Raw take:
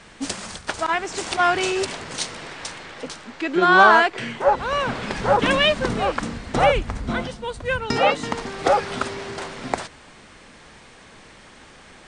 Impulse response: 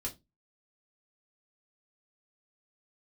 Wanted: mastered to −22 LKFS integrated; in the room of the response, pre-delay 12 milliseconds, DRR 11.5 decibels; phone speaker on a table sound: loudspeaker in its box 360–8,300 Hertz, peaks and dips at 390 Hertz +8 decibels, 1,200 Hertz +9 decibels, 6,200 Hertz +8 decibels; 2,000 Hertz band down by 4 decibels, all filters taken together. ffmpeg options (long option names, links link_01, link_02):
-filter_complex "[0:a]equalizer=frequency=2000:width_type=o:gain=-9,asplit=2[link_01][link_02];[1:a]atrim=start_sample=2205,adelay=12[link_03];[link_02][link_03]afir=irnorm=-1:irlink=0,volume=-11dB[link_04];[link_01][link_04]amix=inputs=2:normalize=0,highpass=frequency=360:width=0.5412,highpass=frequency=360:width=1.3066,equalizer=frequency=390:width_type=q:width=4:gain=8,equalizer=frequency=1200:width_type=q:width=4:gain=9,equalizer=frequency=6200:width_type=q:width=4:gain=8,lowpass=frequency=8300:width=0.5412,lowpass=frequency=8300:width=1.3066,volume=-2dB"